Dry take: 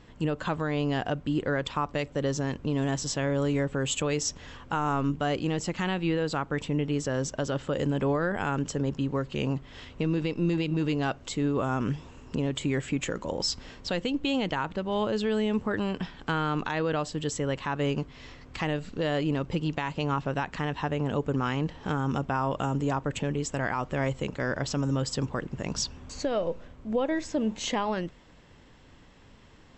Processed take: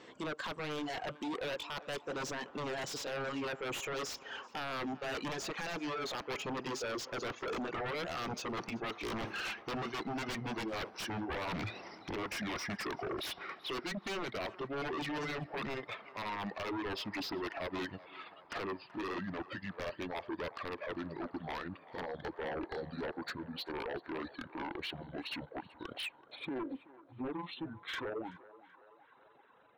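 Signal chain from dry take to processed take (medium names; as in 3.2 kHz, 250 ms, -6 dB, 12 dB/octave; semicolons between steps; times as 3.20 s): pitch bend over the whole clip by -11.5 st starting unshifted; Doppler pass-by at 9.46 s, 12 m/s, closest 6.5 m; frequency weighting A; reverb removal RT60 1.5 s; peaking EQ 390 Hz +8.5 dB 1.1 oct; reverse; compression 8:1, threshold -53 dBFS, peak gain reduction 24.5 dB; reverse; sine folder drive 17 dB, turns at -40 dBFS; on a send: band-passed feedback delay 380 ms, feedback 78%, band-pass 950 Hz, level -15.5 dB; on the sum: slew-rate limiter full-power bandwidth 26 Hz; trim +5.5 dB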